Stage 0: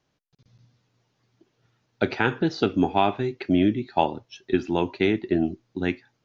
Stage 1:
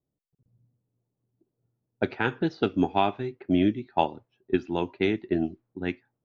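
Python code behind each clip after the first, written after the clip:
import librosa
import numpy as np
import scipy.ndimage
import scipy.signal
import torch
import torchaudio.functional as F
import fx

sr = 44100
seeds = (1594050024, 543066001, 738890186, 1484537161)

y = fx.env_lowpass(x, sr, base_hz=470.0, full_db=-17.0)
y = fx.upward_expand(y, sr, threshold_db=-30.0, expansion=1.5)
y = y * 10.0 ** (-1.5 / 20.0)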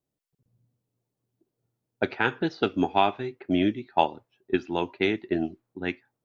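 y = fx.low_shelf(x, sr, hz=370.0, db=-7.5)
y = y * 10.0 ** (3.5 / 20.0)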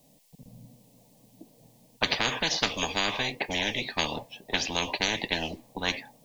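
y = fx.fixed_phaser(x, sr, hz=370.0, stages=6)
y = fx.spectral_comp(y, sr, ratio=10.0)
y = y * 10.0 ** (2.0 / 20.0)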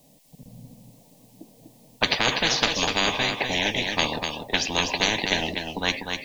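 y = x + 10.0 ** (-5.5 / 20.0) * np.pad(x, (int(247 * sr / 1000.0), 0))[:len(x)]
y = y * 10.0 ** (4.0 / 20.0)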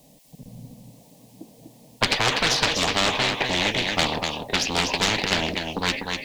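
y = fx.diode_clip(x, sr, knee_db=-19.5)
y = fx.doppler_dist(y, sr, depth_ms=0.47)
y = y * 10.0 ** (3.5 / 20.0)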